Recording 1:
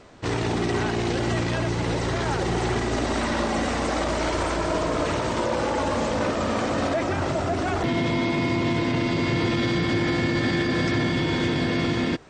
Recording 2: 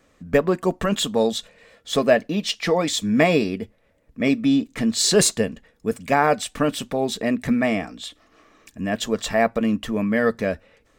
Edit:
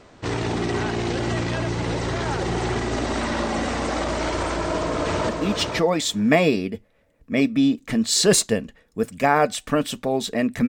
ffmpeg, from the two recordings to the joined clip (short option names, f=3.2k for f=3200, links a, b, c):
-filter_complex "[0:a]apad=whole_dur=10.68,atrim=end=10.68,atrim=end=5.292[a];[1:a]atrim=start=2.168:end=7.56[b];[a][b]acrossfade=d=0.004:c1=hsin:c2=hsin,asplit=2[c][d];[d]afade=t=in:st=4.56:d=0.01,afade=t=out:st=5.29:d=0.01,aecho=0:1:500|1000:0.668344|0.0668344[e];[c][e]amix=inputs=2:normalize=0"